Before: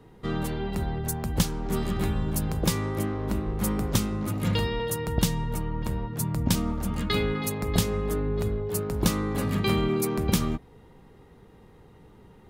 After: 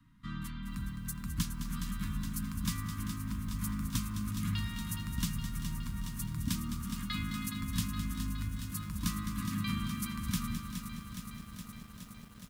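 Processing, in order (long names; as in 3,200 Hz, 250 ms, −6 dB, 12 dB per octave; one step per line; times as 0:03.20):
Chebyshev band-stop filter 290–1,000 Hz, order 5
repeating echo 211 ms, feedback 34%, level −10 dB
feedback echo at a low word length 417 ms, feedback 80%, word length 8 bits, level −8.5 dB
level −9 dB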